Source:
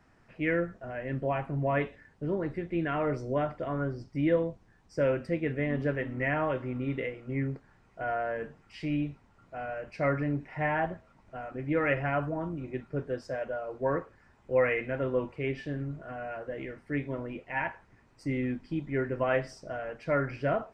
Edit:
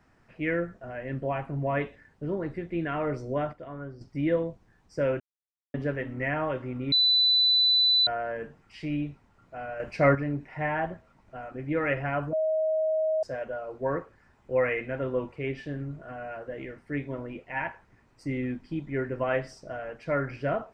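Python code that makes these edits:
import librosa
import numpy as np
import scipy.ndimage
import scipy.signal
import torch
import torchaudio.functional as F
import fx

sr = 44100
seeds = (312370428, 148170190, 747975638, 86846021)

y = fx.edit(x, sr, fx.clip_gain(start_s=3.53, length_s=0.48, db=-7.5),
    fx.silence(start_s=5.2, length_s=0.54),
    fx.bleep(start_s=6.92, length_s=1.15, hz=3990.0, db=-18.5),
    fx.clip_gain(start_s=9.8, length_s=0.35, db=7.0),
    fx.bleep(start_s=12.33, length_s=0.9, hz=631.0, db=-23.0), tone=tone)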